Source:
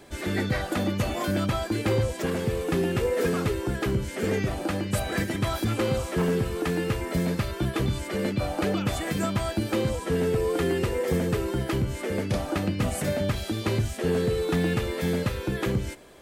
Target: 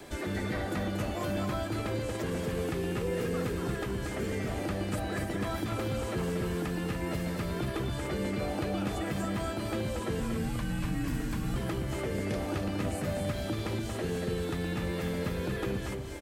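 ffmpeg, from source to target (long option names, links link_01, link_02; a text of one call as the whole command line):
ffmpeg -i in.wav -filter_complex "[0:a]acrossover=split=220|1600[link_01][link_02][link_03];[link_01]acompressor=threshold=-37dB:ratio=4[link_04];[link_02]acompressor=threshold=-38dB:ratio=4[link_05];[link_03]acompressor=threshold=-50dB:ratio=4[link_06];[link_04][link_05][link_06]amix=inputs=3:normalize=0,acrossover=split=780|3900[link_07][link_08][link_09];[link_07]alimiter=level_in=5dB:limit=-24dB:level=0:latency=1,volume=-5dB[link_10];[link_10][link_08][link_09]amix=inputs=3:normalize=0,asettb=1/sr,asplit=3[link_11][link_12][link_13];[link_11]atrim=end=10.204[link_14];[link_12]atrim=start=10.2:end=11.56,asetpts=PTS-STARTPTS,afade=type=in:duration=0.004:curve=qsin,afade=type=out:start_time=1.356:duration=0.004:curve=qsin,afreqshift=-210[link_15];[link_13]atrim=start=11.556[link_16];[link_14][link_15]acrossfade=duration=0.004:curve1=hsin:curve2=qsin[link_17];[link_17][link_16]acrossfade=duration=0.004:curve1=qsin:curve2=hsin,asplit=2[link_18][link_19];[link_19]asoftclip=type=hard:threshold=-31dB,volume=-9dB[link_20];[link_18][link_20]amix=inputs=2:normalize=0,aecho=1:1:233.2|291.5:0.562|0.355" out.wav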